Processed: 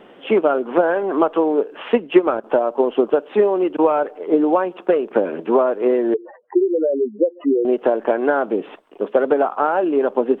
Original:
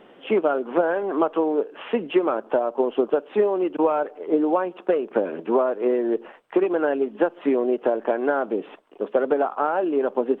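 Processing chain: 6.14–7.65 s: spectral contrast enhancement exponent 3.9; wow and flutter 18 cents; 1.83–2.44 s: transient shaper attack +3 dB, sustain -7 dB; trim +4.5 dB

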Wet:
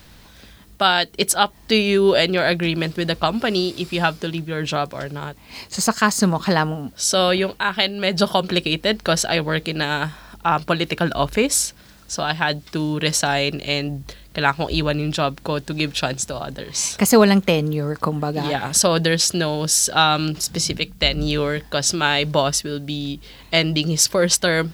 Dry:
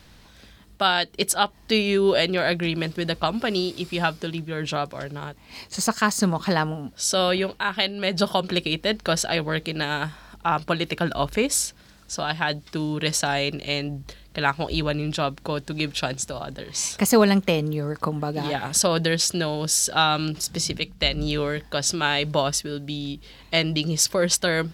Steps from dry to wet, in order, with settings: added noise blue -63 dBFS; trim +4 dB

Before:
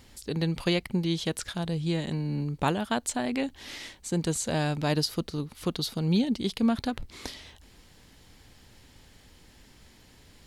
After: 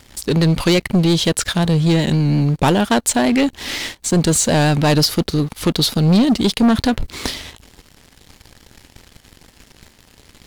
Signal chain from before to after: waveshaping leveller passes 3; vibrato 5.6 Hz 44 cents; trim +5 dB

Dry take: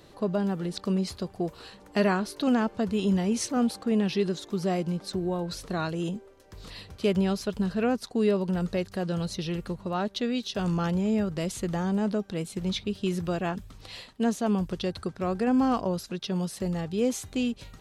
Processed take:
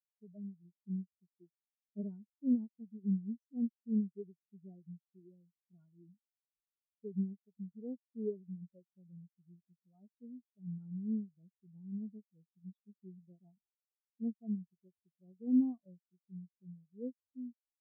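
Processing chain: single-diode clipper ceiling -29 dBFS; vibrato 0.76 Hz 12 cents; spectral contrast expander 4:1; trim -6 dB

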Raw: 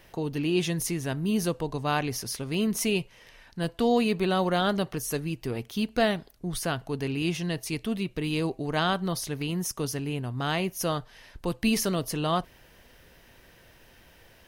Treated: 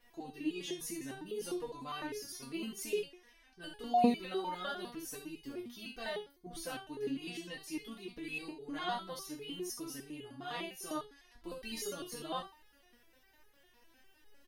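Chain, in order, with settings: early reflections 22 ms -6 dB, 67 ms -6.5 dB; resonator arpeggio 9.9 Hz 240–420 Hz; trim +1.5 dB

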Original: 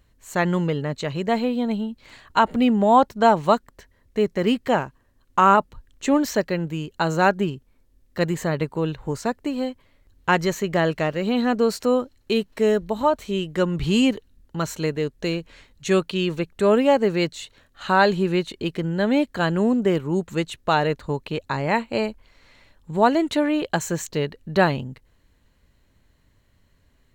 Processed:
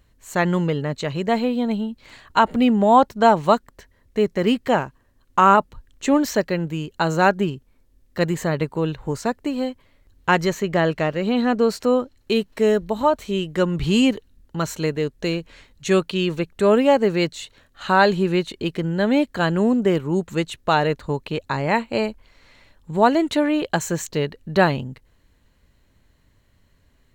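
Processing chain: 10.49–12.17 s: treble shelf 5.8 kHz -5 dB; trim +1.5 dB

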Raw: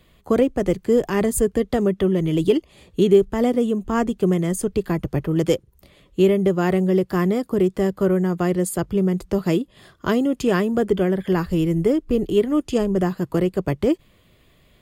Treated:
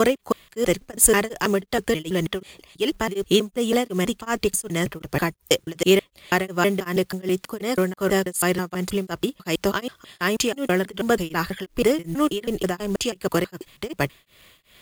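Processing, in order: slices played last to first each 162 ms, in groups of 3; tilt shelf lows -8 dB, about 810 Hz; companded quantiser 6-bit; tremolo of two beating tones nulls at 2.7 Hz; trim +4.5 dB

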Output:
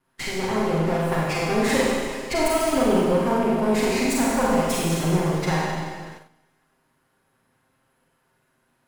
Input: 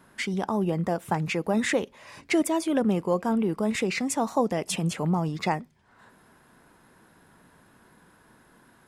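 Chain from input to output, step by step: comb filter that takes the minimum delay 7.6 ms; band-stop 3.6 kHz, Q 29; Schroeder reverb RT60 1.8 s, combs from 33 ms, DRR -5.5 dB; gate -41 dBFS, range -15 dB

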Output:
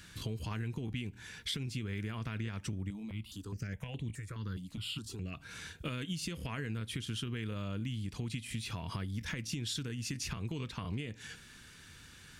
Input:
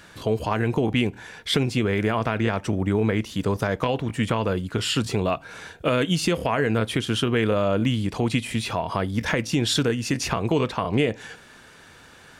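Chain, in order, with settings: amplifier tone stack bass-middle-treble 6-0-2; compression 6:1, threshold -48 dBFS, peak gain reduction 13 dB; 2.90–5.34 s: stepped phaser 4.8 Hz 400–5200 Hz; trim +12.5 dB

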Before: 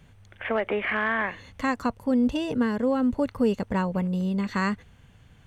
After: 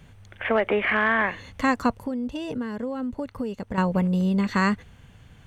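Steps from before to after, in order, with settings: 1.93–3.78 s: compression 4:1, threshold -33 dBFS, peak gain reduction 13 dB; trim +4 dB

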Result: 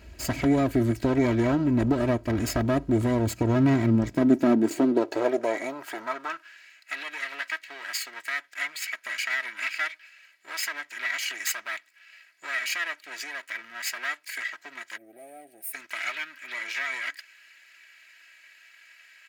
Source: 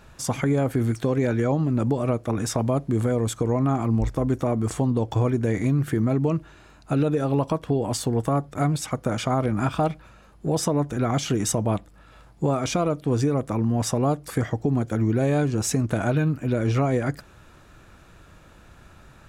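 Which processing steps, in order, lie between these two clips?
comb filter that takes the minimum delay 0.44 ms; fifteen-band graphic EQ 100 Hz -5 dB, 1 kHz -3 dB, 10 kHz -6 dB; high-pass sweep 60 Hz -> 1.9 kHz, 3.06–6.69 s; comb 3.1 ms, depth 64%; time-frequency box 14.97–15.74 s, 840–8200 Hz -28 dB

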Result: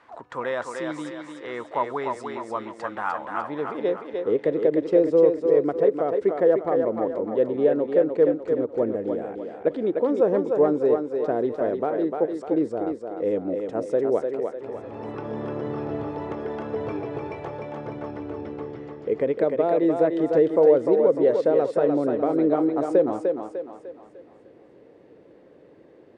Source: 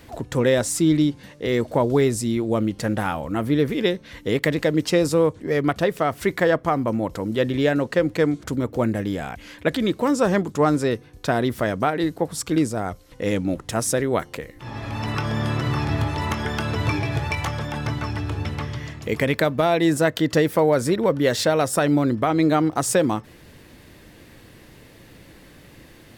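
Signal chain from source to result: resampled via 22.05 kHz; band-pass sweep 1.1 kHz -> 450 Hz, 3.37–4.10 s; on a send: thinning echo 300 ms, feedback 47%, high-pass 270 Hz, level -4 dB; on the sum: endings held to a fixed fall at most 570 dB/s; trim +3 dB

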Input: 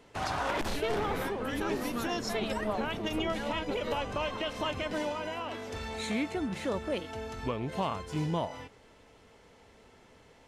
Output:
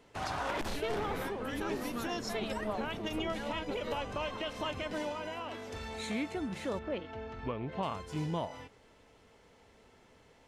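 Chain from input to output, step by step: 6.79–7.83 s: low-pass 2.9 kHz 12 dB/octave; trim -3.5 dB

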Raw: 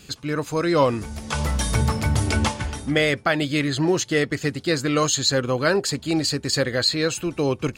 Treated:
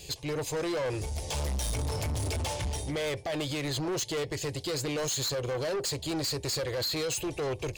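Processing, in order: peak limiter -17 dBFS, peak gain reduction 9.5 dB; static phaser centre 560 Hz, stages 4; saturation -32.5 dBFS, distortion -8 dB; trim +4 dB

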